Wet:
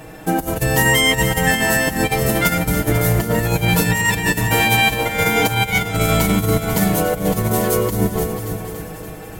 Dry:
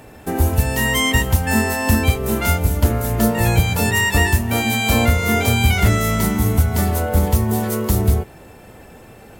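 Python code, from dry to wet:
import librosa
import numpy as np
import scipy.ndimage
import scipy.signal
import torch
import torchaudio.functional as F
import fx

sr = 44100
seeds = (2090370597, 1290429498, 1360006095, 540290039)

p1 = fx.echo_alternate(x, sr, ms=143, hz=1100.0, feedback_pct=80, wet_db=-10.5)
p2 = fx.over_compress(p1, sr, threshold_db=-18.0, ratio=-0.5)
p3 = p2 + 0.94 * np.pad(p2, (int(6.3 * sr / 1000.0), 0))[:len(p2)]
y = p3 + fx.echo_single(p3, sr, ms=493, db=-11.0, dry=0)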